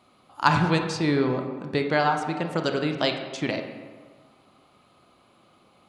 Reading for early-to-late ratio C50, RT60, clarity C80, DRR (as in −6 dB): 6.5 dB, 1.5 s, 8.0 dB, 4.5 dB